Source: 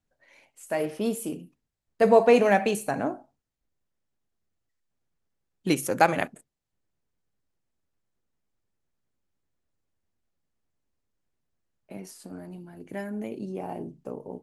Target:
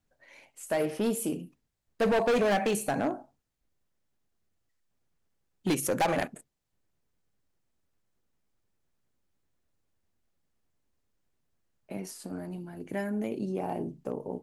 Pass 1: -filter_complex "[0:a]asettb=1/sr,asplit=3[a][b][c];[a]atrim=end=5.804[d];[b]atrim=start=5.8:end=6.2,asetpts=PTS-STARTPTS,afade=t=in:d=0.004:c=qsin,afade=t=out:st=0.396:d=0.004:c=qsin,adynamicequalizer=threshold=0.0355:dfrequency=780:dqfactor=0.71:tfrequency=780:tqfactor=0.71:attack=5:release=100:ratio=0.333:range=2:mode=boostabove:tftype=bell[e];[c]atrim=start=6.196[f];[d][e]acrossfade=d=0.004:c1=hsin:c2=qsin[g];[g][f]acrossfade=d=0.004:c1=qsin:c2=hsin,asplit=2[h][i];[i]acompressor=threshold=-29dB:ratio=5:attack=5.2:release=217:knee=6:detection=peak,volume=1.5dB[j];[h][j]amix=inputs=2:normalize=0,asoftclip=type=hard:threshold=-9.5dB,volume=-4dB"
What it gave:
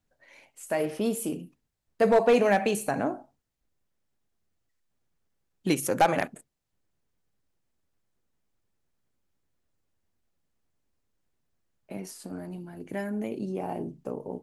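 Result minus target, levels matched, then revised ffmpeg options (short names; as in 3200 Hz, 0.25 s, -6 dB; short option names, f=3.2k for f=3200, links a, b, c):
hard clip: distortion -9 dB
-filter_complex "[0:a]asettb=1/sr,asplit=3[a][b][c];[a]atrim=end=5.804[d];[b]atrim=start=5.8:end=6.2,asetpts=PTS-STARTPTS,afade=t=in:d=0.004:c=qsin,afade=t=out:st=0.396:d=0.004:c=qsin,adynamicequalizer=threshold=0.0355:dfrequency=780:dqfactor=0.71:tfrequency=780:tqfactor=0.71:attack=5:release=100:ratio=0.333:range=2:mode=boostabove:tftype=bell[e];[c]atrim=start=6.196[f];[d][e]acrossfade=d=0.004:c1=hsin:c2=qsin[g];[g][f]acrossfade=d=0.004:c1=qsin:c2=hsin,asplit=2[h][i];[i]acompressor=threshold=-29dB:ratio=5:attack=5.2:release=217:knee=6:detection=peak,volume=1.5dB[j];[h][j]amix=inputs=2:normalize=0,asoftclip=type=hard:threshold=-18dB,volume=-4dB"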